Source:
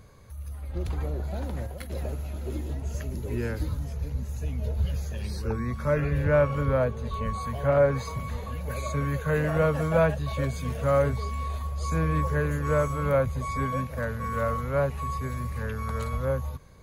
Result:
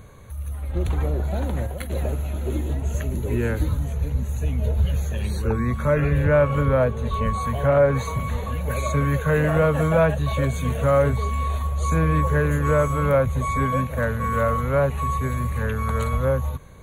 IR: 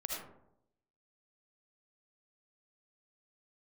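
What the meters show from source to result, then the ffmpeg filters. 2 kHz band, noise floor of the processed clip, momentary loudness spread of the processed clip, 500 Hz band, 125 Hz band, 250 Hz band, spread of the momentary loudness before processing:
+5.5 dB, −31 dBFS, 8 LU, +4.5 dB, +6.0 dB, +6.0 dB, 10 LU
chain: -filter_complex "[0:a]asplit=2[link_01][link_02];[link_02]alimiter=limit=-19.5dB:level=0:latency=1:release=144,volume=2dB[link_03];[link_01][link_03]amix=inputs=2:normalize=0,asuperstop=centerf=5100:order=4:qfactor=2.6"

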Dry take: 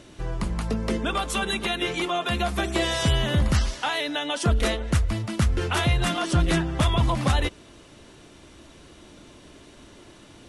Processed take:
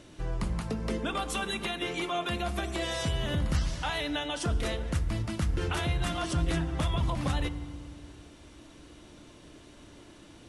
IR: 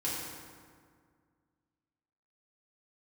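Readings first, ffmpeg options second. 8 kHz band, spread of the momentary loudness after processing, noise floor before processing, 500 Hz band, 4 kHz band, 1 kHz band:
−7.0 dB, 6 LU, −50 dBFS, −6.5 dB, −7.0 dB, −7.0 dB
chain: -filter_complex "[0:a]alimiter=limit=-17dB:level=0:latency=1:release=224,asplit=2[link_01][link_02];[1:a]atrim=start_sample=2205,lowshelf=frequency=160:gain=8.5[link_03];[link_02][link_03]afir=irnorm=-1:irlink=0,volume=-16dB[link_04];[link_01][link_04]amix=inputs=2:normalize=0,volume=-5.5dB"

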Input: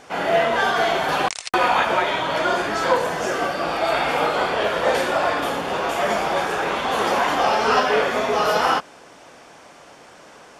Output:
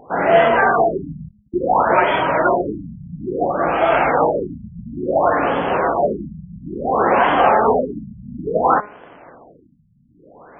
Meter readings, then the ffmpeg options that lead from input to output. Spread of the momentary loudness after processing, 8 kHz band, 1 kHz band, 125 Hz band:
18 LU, below −40 dB, +3.0 dB, +6.5 dB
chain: -filter_complex "[0:a]aemphasis=mode=reproduction:type=75fm,bandreject=frequency=208.3:width_type=h:width=4,bandreject=frequency=416.6:width_type=h:width=4,bandreject=frequency=624.9:width_type=h:width=4,bandreject=frequency=833.2:width_type=h:width=4,bandreject=frequency=1041.5:width_type=h:width=4,bandreject=frequency=1249.8:width_type=h:width=4,bandreject=frequency=1458.1:width_type=h:width=4,bandreject=frequency=1666.4:width_type=h:width=4,bandreject=frequency=1874.7:width_type=h:width=4,bandreject=frequency=2083:width_type=h:width=4,bandreject=frequency=2291.3:width_type=h:width=4,bandreject=frequency=2499.6:width_type=h:width=4,bandreject=frequency=2707.9:width_type=h:width=4,bandreject=frequency=2916.2:width_type=h:width=4,bandreject=frequency=3124.5:width_type=h:width=4,bandreject=frequency=3332.8:width_type=h:width=4,bandreject=frequency=3541.1:width_type=h:width=4,bandreject=frequency=3749.4:width_type=h:width=4,bandreject=frequency=3957.7:width_type=h:width=4,asplit=2[link_01][link_02];[link_02]acrusher=bits=5:mix=0:aa=0.000001,volume=-10.5dB[link_03];[link_01][link_03]amix=inputs=2:normalize=0,asoftclip=type=hard:threshold=-3.5dB,afftfilt=real='re*lt(b*sr/1024,210*pow(3500/210,0.5+0.5*sin(2*PI*0.58*pts/sr)))':imag='im*lt(b*sr/1024,210*pow(3500/210,0.5+0.5*sin(2*PI*0.58*pts/sr)))':win_size=1024:overlap=0.75,volume=3.5dB"

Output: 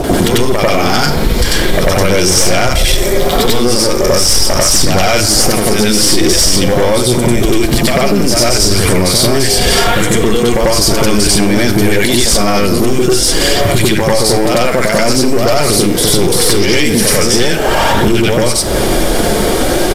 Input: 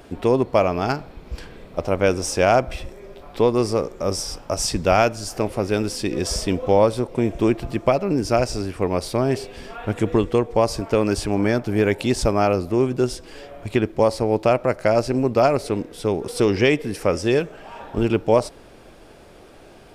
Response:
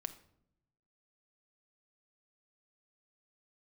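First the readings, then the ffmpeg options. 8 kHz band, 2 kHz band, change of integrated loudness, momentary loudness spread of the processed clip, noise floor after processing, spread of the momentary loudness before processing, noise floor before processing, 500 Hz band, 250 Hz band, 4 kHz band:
+21.0 dB, +14.0 dB, +10.5 dB, 3 LU, −13 dBFS, 12 LU, −46 dBFS, +7.5 dB, +10.0 dB, +20.5 dB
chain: -filter_complex "[0:a]acompressor=threshold=-28dB:ratio=12,highshelf=frequency=8300:gain=11,acrossover=split=1100[link_01][link_02];[link_02]adelay=40[link_03];[link_01][link_03]amix=inputs=2:normalize=0,aeval=exprs='0.376*(cos(1*acos(clip(val(0)/0.376,-1,1)))-cos(1*PI/2))+0.168*(cos(3*acos(clip(val(0)/0.376,-1,1)))-cos(3*PI/2))+0.168*(cos(6*acos(clip(val(0)/0.376,-1,1)))-cos(6*PI/2))+0.0168*(cos(7*acos(clip(val(0)/0.376,-1,1)))-cos(7*PI/2))+0.119*(cos(8*acos(clip(val(0)/0.376,-1,1)))-cos(8*PI/2))':channel_layout=same,aphaser=in_gain=1:out_gain=1:delay=4.5:decay=0.3:speed=0.44:type=sinusoidal,bandreject=frequency=2600:width=6,acrossover=split=1800|5400[link_04][link_05][link_06];[link_04]acompressor=threshold=-45dB:ratio=4[link_07];[link_05]acompressor=threshold=-46dB:ratio=4[link_08];[link_06]acompressor=threshold=-46dB:ratio=4[link_09];[link_07][link_08][link_09]amix=inputs=3:normalize=0,asplit=2[link_10][link_11];[1:a]atrim=start_sample=2205,adelay=94[link_12];[link_11][link_12]afir=irnorm=-1:irlink=0,volume=7dB[link_13];[link_10][link_13]amix=inputs=2:normalize=0,asoftclip=type=tanh:threshold=-30.5dB,acrusher=bits=9:mix=0:aa=0.000001,aresample=32000,aresample=44100,alimiter=level_in=33.5dB:limit=-1dB:release=50:level=0:latency=1,volume=-1dB"

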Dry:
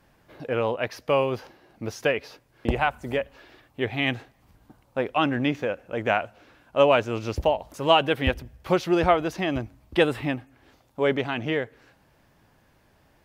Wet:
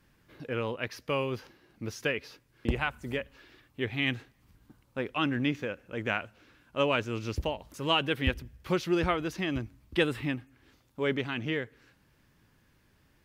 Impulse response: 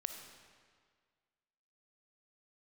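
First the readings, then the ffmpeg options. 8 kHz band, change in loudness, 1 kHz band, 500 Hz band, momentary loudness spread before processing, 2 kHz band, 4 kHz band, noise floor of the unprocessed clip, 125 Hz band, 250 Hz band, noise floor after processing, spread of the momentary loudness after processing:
can't be measured, −6.5 dB, −9.5 dB, −9.0 dB, 14 LU, −4.0 dB, −3.5 dB, −62 dBFS, −3.5 dB, −4.5 dB, −67 dBFS, 13 LU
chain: -af "equalizer=frequency=700:width_type=o:width=0.98:gain=-11,volume=-3dB"

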